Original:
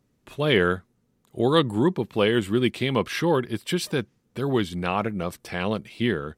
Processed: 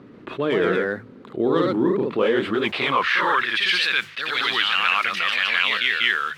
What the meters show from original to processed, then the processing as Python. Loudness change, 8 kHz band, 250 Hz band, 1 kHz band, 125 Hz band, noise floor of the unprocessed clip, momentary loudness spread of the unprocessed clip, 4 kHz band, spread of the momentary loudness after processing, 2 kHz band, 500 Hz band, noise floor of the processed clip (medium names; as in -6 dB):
+4.0 dB, -3.5 dB, -1.5 dB, +6.0 dB, -8.5 dB, -70 dBFS, 10 LU, +9.0 dB, 7 LU, +10.5 dB, +1.0 dB, -44 dBFS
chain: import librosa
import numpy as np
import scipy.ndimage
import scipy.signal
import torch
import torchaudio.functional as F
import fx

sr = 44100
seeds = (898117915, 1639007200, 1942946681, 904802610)

y = fx.band_shelf(x, sr, hz=2200.0, db=12.0, octaves=2.4)
y = fx.hum_notches(y, sr, base_hz=50, count=3)
y = 10.0 ** (-4.0 / 20.0) * np.tanh(y / 10.0 ** (-4.0 / 20.0))
y = fx.mod_noise(y, sr, seeds[0], snr_db=22)
y = fx.filter_sweep_bandpass(y, sr, from_hz=340.0, to_hz=2400.0, start_s=2.05, end_s=3.9, q=1.3)
y = fx.echo_pitch(y, sr, ms=142, semitones=1, count=2, db_per_echo=-3.0)
y = fx.env_flatten(y, sr, amount_pct=50)